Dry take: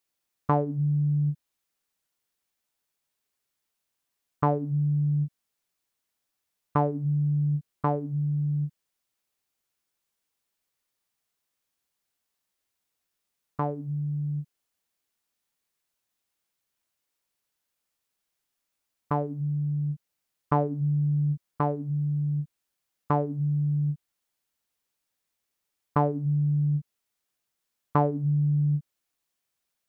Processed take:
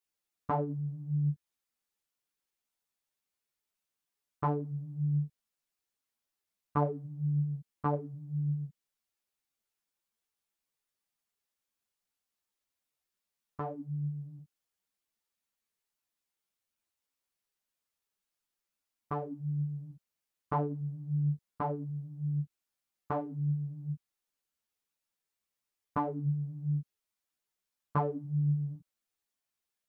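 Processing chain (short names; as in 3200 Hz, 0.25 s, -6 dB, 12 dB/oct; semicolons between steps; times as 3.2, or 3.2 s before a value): ensemble effect; gain -3.5 dB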